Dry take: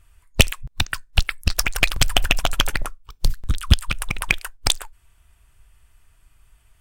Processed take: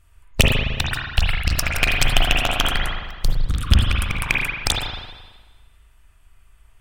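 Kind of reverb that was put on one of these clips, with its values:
spring reverb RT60 1.3 s, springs 38/53 ms, chirp 45 ms, DRR −2.5 dB
level −2 dB

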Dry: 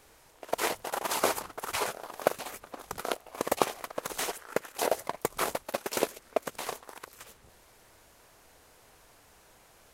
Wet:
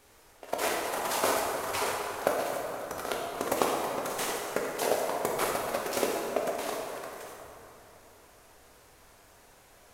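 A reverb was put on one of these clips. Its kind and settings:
dense smooth reverb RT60 3.1 s, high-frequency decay 0.55×, DRR −2.5 dB
level −2.5 dB

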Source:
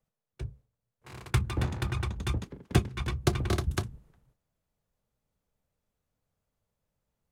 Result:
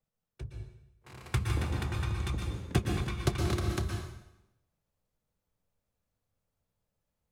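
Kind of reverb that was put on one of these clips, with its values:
dense smooth reverb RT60 0.86 s, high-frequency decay 0.95×, pre-delay 105 ms, DRR 1.5 dB
level −4 dB

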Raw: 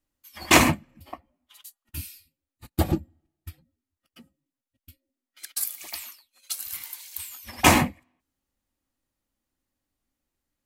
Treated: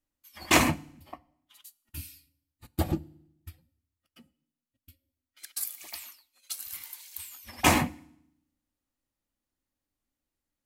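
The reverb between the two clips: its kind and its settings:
feedback delay network reverb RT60 0.71 s, low-frequency decay 1.4×, high-frequency decay 1×, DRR 20 dB
level −5 dB

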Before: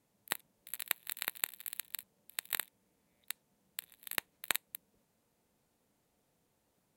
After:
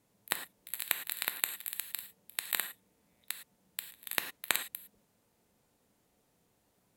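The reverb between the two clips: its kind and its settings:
reverb whose tail is shaped and stops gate 130 ms flat, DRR 8 dB
level +3 dB

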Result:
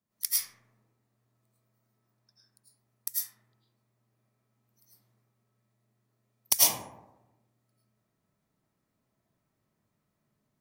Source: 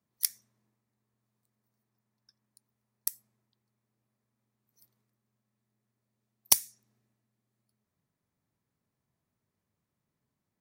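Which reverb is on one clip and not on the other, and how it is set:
comb and all-pass reverb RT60 1 s, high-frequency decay 0.35×, pre-delay 65 ms, DRR −9.5 dB
level −4 dB

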